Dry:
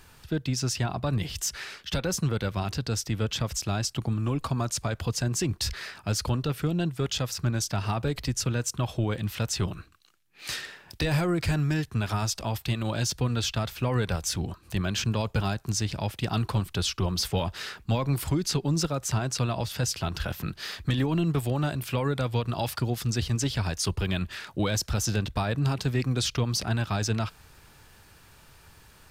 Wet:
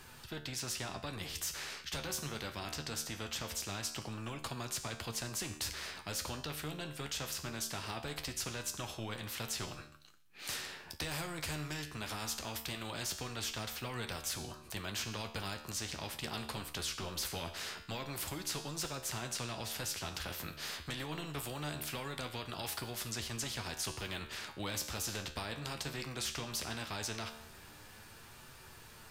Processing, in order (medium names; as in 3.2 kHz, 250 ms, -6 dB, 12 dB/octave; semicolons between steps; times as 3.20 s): flange 0.21 Hz, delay 7.7 ms, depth 6.5 ms, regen +48%; feedback comb 75 Hz, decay 0.56 s, harmonics all, mix 60%; spectrum-flattening compressor 2:1; trim -2.5 dB